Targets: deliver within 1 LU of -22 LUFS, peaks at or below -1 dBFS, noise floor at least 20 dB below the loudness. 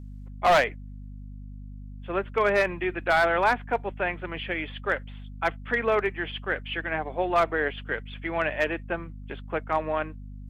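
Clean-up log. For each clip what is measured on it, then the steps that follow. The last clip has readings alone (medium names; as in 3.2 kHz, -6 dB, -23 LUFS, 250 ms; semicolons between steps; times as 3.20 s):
clipped samples 0.4%; clipping level -14.5 dBFS; hum 50 Hz; highest harmonic 250 Hz; hum level -38 dBFS; loudness -27.0 LUFS; peak level -14.5 dBFS; loudness target -22.0 LUFS
-> clip repair -14.5 dBFS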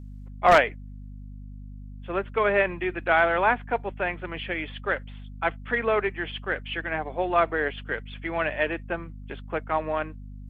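clipped samples 0.0%; hum 50 Hz; highest harmonic 250 Hz; hum level -38 dBFS
-> hum notches 50/100/150/200/250 Hz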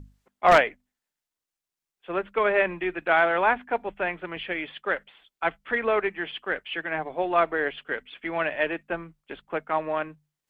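hum not found; loudness -26.0 LUFS; peak level -5.5 dBFS; loudness target -22.0 LUFS
-> trim +4 dB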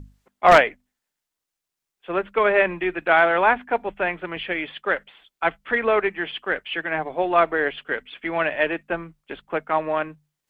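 loudness -22.0 LUFS; peak level -1.5 dBFS; noise floor -85 dBFS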